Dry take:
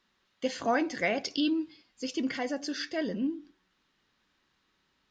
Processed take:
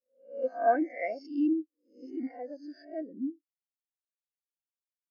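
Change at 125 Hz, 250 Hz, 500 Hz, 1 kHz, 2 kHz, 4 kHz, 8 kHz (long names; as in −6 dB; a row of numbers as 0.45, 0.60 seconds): below −15 dB, −1.5 dB, +1.0 dB, +2.5 dB, −7.5 dB, below −25 dB, can't be measured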